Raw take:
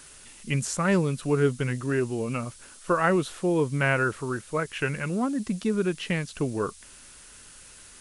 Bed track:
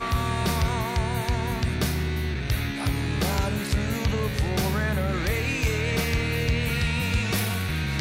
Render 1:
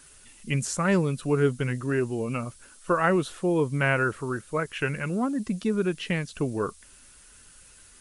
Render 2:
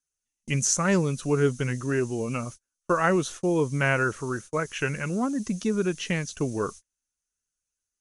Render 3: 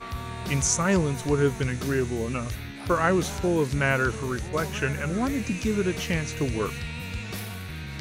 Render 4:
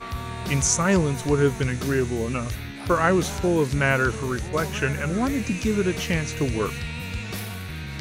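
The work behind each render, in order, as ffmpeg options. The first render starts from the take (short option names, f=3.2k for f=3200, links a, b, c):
-af "afftdn=nr=6:nf=-49"
-af "agate=range=-38dB:threshold=-40dB:ratio=16:detection=peak,equalizer=f=6.2k:w=3.4:g=14.5"
-filter_complex "[1:a]volume=-9dB[a];[0:a][a]amix=inputs=2:normalize=0"
-af "volume=2.5dB"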